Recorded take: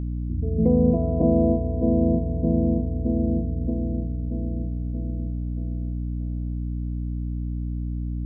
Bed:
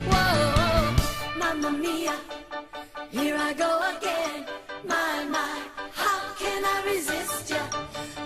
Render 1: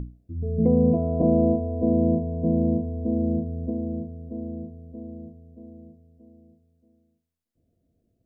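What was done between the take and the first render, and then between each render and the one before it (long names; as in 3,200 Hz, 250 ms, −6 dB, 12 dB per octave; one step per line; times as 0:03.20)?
mains-hum notches 60/120/180/240/300/360 Hz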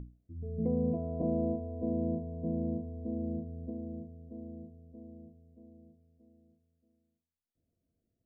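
level −11.5 dB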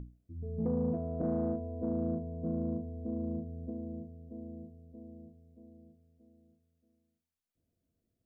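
soft clipping −22.5 dBFS, distortion −22 dB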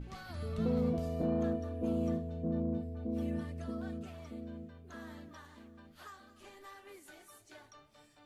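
mix in bed −27 dB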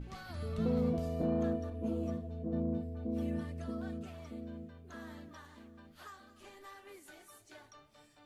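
0:01.70–0:02.53: string-ensemble chorus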